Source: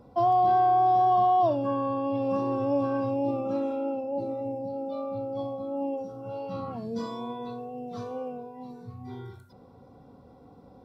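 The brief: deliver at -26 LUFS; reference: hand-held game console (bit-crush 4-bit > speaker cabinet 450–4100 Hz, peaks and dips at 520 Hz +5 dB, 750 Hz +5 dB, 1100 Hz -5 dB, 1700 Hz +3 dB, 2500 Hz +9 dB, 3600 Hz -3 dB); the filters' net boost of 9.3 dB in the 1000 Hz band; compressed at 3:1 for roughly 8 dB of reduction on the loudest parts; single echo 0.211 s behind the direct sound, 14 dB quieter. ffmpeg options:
-af "equalizer=f=1k:t=o:g=9,acompressor=threshold=-25dB:ratio=3,aecho=1:1:211:0.2,acrusher=bits=3:mix=0:aa=0.000001,highpass=450,equalizer=f=520:t=q:w=4:g=5,equalizer=f=750:t=q:w=4:g=5,equalizer=f=1.1k:t=q:w=4:g=-5,equalizer=f=1.7k:t=q:w=4:g=3,equalizer=f=2.5k:t=q:w=4:g=9,equalizer=f=3.6k:t=q:w=4:g=-3,lowpass=f=4.1k:w=0.5412,lowpass=f=4.1k:w=1.3066,volume=-4.5dB"

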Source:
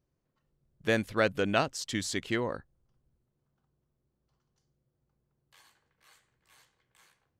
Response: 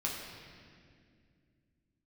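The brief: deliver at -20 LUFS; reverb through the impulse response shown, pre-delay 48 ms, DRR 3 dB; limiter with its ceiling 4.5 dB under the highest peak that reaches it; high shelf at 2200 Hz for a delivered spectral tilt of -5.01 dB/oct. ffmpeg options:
-filter_complex "[0:a]highshelf=f=2.2k:g=-4.5,alimiter=limit=-18dB:level=0:latency=1,asplit=2[a][b];[1:a]atrim=start_sample=2205,adelay=48[c];[b][c]afir=irnorm=-1:irlink=0,volume=-7dB[d];[a][d]amix=inputs=2:normalize=0,volume=12.5dB"

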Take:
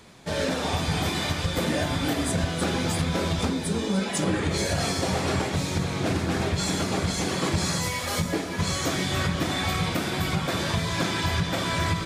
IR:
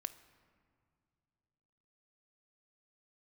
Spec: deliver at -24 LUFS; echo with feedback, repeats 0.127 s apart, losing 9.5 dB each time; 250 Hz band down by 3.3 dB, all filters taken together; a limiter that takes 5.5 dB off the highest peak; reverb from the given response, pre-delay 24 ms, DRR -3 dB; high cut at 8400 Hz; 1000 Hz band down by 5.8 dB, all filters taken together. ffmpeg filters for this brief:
-filter_complex "[0:a]lowpass=8.4k,equalizer=f=250:t=o:g=-4.5,equalizer=f=1k:t=o:g=-7.5,alimiter=limit=-21dB:level=0:latency=1,aecho=1:1:127|254|381|508:0.335|0.111|0.0365|0.012,asplit=2[a][b];[1:a]atrim=start_sample=2205,adelay=24[c];[b][c]afir=irnorm=-1:irlink=0,volume=5.5dB[d];[a][d]amix=inputs=2:normalize=0,volume=1dB"

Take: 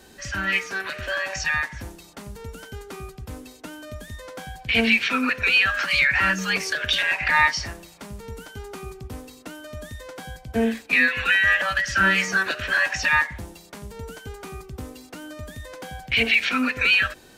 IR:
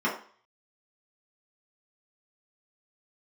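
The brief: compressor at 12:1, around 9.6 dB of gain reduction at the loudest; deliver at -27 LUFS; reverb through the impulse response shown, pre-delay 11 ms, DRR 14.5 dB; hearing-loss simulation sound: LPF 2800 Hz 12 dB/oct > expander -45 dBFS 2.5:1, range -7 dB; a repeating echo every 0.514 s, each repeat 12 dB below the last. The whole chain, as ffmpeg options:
-filter_complex "[0:a]acompressor=threshold=-24dB:ratio=12,aecho=1:1:514|1028|1542:0.251|0.0628|0.0157,asplit=2[a][b];[1:a]atrim=start_sample=2205,adelay=11[c];[b][c]afir=irnorm=-1:irlink=0,volume=-26.5dB[d];[a][d]amix=inputs=2:normalize=0,lowpass=2.8k,agate=range=-7dB:threshold=-45dB:ratio=2.5,volume=3.5dB"

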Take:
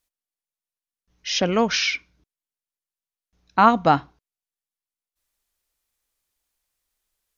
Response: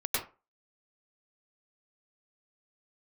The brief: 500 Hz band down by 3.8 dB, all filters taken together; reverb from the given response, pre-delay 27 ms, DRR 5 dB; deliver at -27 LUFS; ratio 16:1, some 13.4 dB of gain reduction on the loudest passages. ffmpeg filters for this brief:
-filter_complex "[0:a]equalizer=f=500:t=o:g=-5,acompressor=threshold=-24dB:ratio=16,asplit=2[a][b];[1:a]atrim=start_sample=2205,adelay=27[c];[b][c]afir=irnorm=-1:irlink=0,volume=-12.5dB[d];[a][d]amix=inputs=2:normalize=0,volume=2dB"

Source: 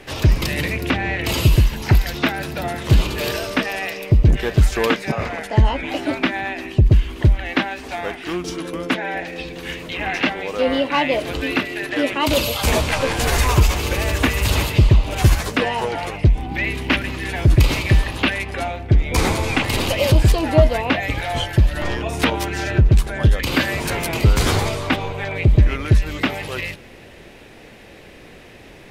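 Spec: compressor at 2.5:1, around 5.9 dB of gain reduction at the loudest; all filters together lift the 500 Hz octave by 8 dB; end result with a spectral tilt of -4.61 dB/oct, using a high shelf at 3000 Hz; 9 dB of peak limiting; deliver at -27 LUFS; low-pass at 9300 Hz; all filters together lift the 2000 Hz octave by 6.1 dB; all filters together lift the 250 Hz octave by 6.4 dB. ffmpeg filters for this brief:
-af "lowpass=9.3k,equalizer=f=250:t=o:g=5.5,equalizer=f=500:t=o:g=8,equalizer=f=2k:t=o:g=4.5,highshelf=f=3k:g=6.5,acompressor=threshold=-15dB:ratio=2.5,volume=-6dB,alimiter=limit=-17.5dB:level=0:latency=1"

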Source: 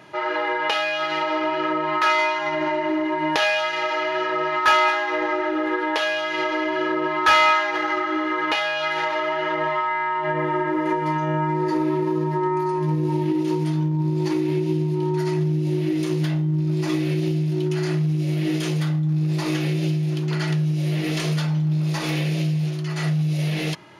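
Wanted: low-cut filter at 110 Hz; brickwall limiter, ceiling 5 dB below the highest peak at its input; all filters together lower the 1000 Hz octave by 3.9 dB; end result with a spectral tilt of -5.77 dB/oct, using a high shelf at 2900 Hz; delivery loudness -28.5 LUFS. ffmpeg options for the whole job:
-af "highpass=110,equalizer=f=1k:t=o:g=-3.5,highshelf=f=2.9k:g=-8.5,volume=-3.5dB,alimiter=limit=-19.5dB:level=0:latency=1"

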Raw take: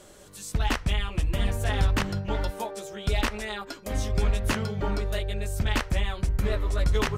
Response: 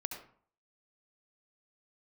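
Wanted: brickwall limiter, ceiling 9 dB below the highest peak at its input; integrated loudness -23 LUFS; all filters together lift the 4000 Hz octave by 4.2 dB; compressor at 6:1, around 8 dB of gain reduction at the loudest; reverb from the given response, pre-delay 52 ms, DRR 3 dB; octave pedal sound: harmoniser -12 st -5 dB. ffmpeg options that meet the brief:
-filter_complex "[0:a]equalizer=f=4k:t=o:g=5.5,acompressor=threshold=-28dB:ratio=6,alimiter=level_in=4dB:limit=-24dB:level=0:latency=1,volume=-4dB,asplit=2[a][b];[1:a]atrim=start_sample=2205,adelay=52[c];[b][c]afir=irnorm=-1:irlink=0,volume=-3dB[d];[a][d]amix=inputs=2:normalize=0,asplit=2[e][f];[f]asetrate=22050,aresample=44100,atempo=2,volume=-5dB[g];[e][g]amix=inputs=2:normalize=0,volume=13.5dB"

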